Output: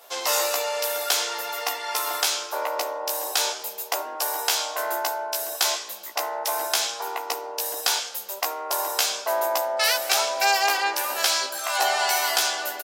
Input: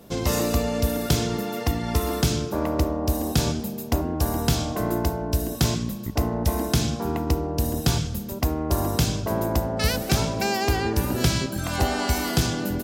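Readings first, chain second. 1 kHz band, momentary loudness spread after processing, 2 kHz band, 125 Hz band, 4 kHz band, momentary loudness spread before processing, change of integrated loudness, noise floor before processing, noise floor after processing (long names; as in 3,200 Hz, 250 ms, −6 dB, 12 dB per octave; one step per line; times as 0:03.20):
+4.5 dB, 8 LU, +6.0 dB, below −40 dB, +5.5 dB, 4 LU, +0.5 dB, −33 dBFS, −38 dBFS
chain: high-pass filter 670 Hz 24 dB per octave
double-tracking delay 15 ms −3 dB
level +4 dB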